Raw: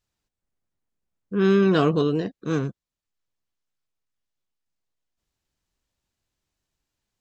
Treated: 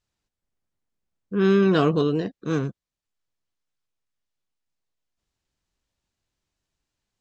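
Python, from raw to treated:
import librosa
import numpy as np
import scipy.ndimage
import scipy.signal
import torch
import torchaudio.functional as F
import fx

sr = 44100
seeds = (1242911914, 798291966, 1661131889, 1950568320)

y = scipy.signal.sosfilt(scipy.signal.butter(2, 9200.0, 'lowpass', fs=sr, output='sos'), x)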